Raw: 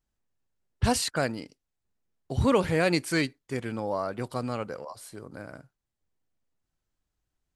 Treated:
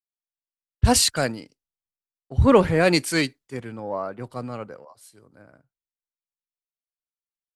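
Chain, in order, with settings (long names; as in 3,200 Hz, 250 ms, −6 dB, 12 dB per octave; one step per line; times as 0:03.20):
in parallel at −10 dB: soft clipping −24 dBFS, distortion −9 dB
on the sum: multiband upward and downward expander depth 100%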